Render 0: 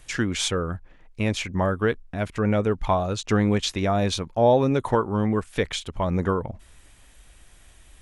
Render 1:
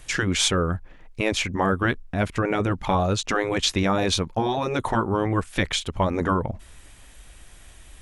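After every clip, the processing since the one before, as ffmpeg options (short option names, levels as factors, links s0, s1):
-af "afftfilt=real='re*lt(hypot(re,im),0.447)':imag='im*lt(hypot(re,im),0.447)':win_size=1024:overlap=0.75,volume=1.68"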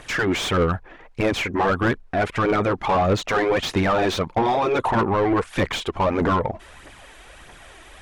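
-filter_complex "[0:a]aphaser=in_gain=1:out_gain=1:delay=3.1:decay=0.46:speed=1.6:type=triangular,asplit=2[s0][s1];[s1]highpass=f=720:p=1,volume=17.8,asoftclip=type=tanh:threshold=0.562[s2];[s0][s2]amix=inputs=2:normalize=0,lowpass=f=1100:p=1,volume=0.501,volume=0.596"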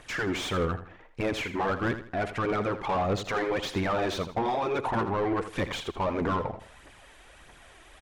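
-af "aecho=1:1:81|162|243:0.266|0.0878|0.029,volume=0.398"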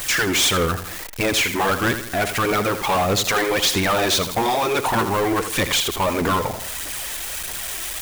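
-af "aeval=exprs='val(0)+0.5*0.00891*sgn(val(0))':c=same,crystalizer=i=5:c=0,volume=1.88"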